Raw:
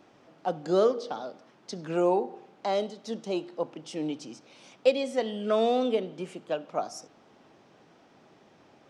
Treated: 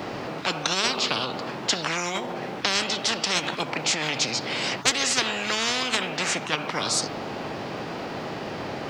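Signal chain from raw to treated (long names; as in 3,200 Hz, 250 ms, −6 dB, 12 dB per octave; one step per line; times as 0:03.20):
formants moved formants −3 semitones
every bin compressed towards the loudest bin 10 to 1
level +3 dB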